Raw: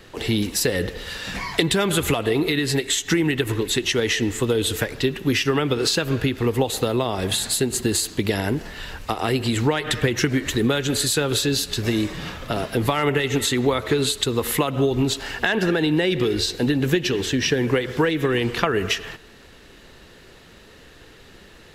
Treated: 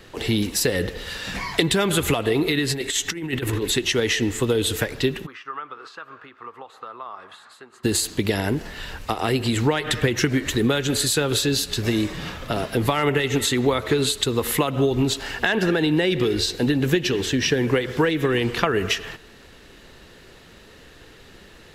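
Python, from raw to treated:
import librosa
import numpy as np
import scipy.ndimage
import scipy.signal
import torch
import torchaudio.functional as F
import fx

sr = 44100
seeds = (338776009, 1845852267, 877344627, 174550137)

y = fx.over_compress(x, sr, threshold_db=-24.0, ratio=-0.5, at=(2.7, 3.71))
y = fx.bandpass_q(y, sr, hz=1200.0, q=5.4, at=(5.25, 7.83), fade=0.02)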